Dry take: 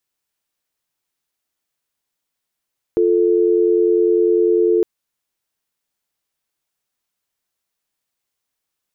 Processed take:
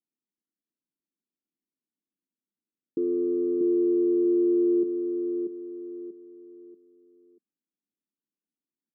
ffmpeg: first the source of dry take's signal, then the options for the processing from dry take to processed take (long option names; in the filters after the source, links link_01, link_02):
-f lavfi -i "aevalsrc='0.188*(sin(2*PI*350*t)+sin(2*PI*440*t))':duration=1.86:sample_rate=44100"
-filter_complex "[0:a]asoftclip=type=tanh:threshold=-15dB,asuperpass=centerf=250:order=4:qfactor=1.7,asplit=2[link_01][link_02];[link_02]aecho=0:1:637|1274|1911|2548:0.531|0.186|0.065|0.0228[link_03];[link_01][link_03]amix=inputs=2:normalize=0"